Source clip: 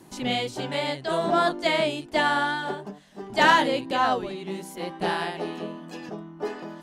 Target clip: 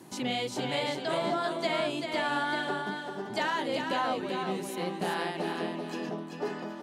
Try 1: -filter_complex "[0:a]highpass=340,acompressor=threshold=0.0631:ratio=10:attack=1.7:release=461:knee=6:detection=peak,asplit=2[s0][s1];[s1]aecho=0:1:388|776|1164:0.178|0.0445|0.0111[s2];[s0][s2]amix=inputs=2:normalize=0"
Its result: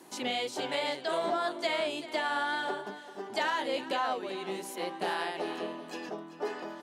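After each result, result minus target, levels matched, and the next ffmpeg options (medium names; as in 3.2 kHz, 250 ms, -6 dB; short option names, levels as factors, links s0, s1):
125 Hz band -10.5 dB; echo-to-direct -9.5 dB
-filter_complex "[0:a]highpass=110,acompressor=threshold=0.0631:ratio=10:attack=1.7:release=461:knee=6:detection=peak,asplit=2[s0][s1];[s1]aecho=0:1:388|776|1164:0.178|0.0445|0.0111[s2];[s0][s2]amix=inputs=2:normalize=0"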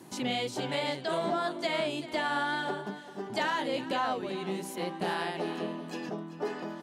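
echo-to-direct -9.5 dB
-filter_complex "[0:a]highpass=110,acompressor=threshold=0.0631:ratio=10:attack=1.7:release=461:knee=6:detection=peak,asplit=2[s0][s1];[s1]aecho=0:1:388|776|1164:0.531|0.133|0.0332[s2];[s0][s2]amix=inputs=2:normalize=0"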